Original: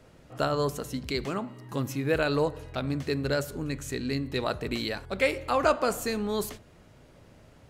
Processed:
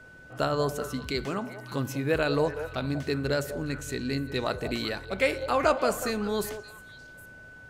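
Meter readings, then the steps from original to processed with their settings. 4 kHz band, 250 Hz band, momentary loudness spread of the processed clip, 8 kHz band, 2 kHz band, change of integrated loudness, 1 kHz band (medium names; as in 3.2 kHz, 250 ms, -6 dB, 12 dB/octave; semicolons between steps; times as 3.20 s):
0.0 dB, 0.0 dB, 20 LU, 0.0 dB, +1.0 dB, +0.5 dB, +0.5 dB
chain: whistle 1.5 kHz -49 dBFS; repeats whose band climbs or falls 191 ms, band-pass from 590 Hz, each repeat 1.4 oct, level -8 dB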